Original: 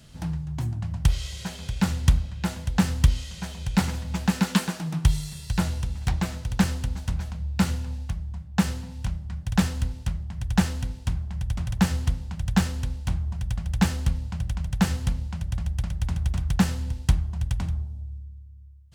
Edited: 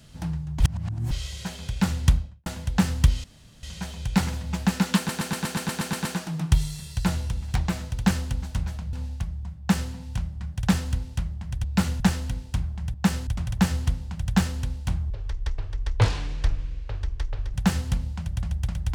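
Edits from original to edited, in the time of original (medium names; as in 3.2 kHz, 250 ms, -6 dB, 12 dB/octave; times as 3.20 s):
0.60–1.11 s: reverse
2.08–2.46 s: studio fade out
3.24 s: insert room tone 0.39 s
4.58 s: stutter 0.12 s, 10 plays
7.46–7.82 s: move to 10.53 s
8.48–8.81 s: copy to 11.47 s
13.30–14.69 s: speed 57%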